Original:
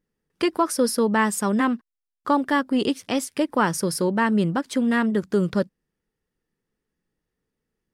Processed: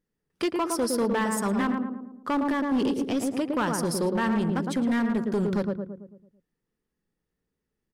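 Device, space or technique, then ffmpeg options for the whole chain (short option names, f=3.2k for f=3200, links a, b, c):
limiter into clipper: -filter_complex "[0:a]asplit=3[a][b][c];[a]afade=t=out:st=2.33:d=0.02[d];[b]lowshelf=f=410:g=7,afade=t=in:st=2.33:d=0.02,afade=t=out:st=3.39:d=0.02[e];[c]afade=t=in:st=3.39:d=0.02[f];[d][e][f]amix=inputs=3:normalize=0,asplit=2[g][h];[h]adelay=111,lowpass=f=1.1k:p=1,volume=-3.5dB,asplit=2[i][j];[j]adelay=111,lowpass=f=1.1k:p=1,volume=0.53,asplit=2[k][l];[l]adelay=111,lowpass=f=1.1k:p=1,volume=0.53,asplit=2[m][n];[n]adelay=111,lowpass=f=1.1k:p=1,volume=0.53,asplit=2[o][p];[p]adelay=111,lowpass=f=1.1k:p=1,volume=0.53,asplit=2[q][r];[r]adelay=111,lowpass=f=1.1k:p=1,volume=0.53,asplit=2[s][t];[t]adelay=111,lowpass=f=1.1k:p=1,volume=0.53[u];[g][i][k][m][o][q][s][u]amix=inputs=8:normalize=0,alimiter=limit=-11.5dB:level=0:latency=1:release=261,asoftclip=type=hard:threshold=-17dB,volume=-3.5dB"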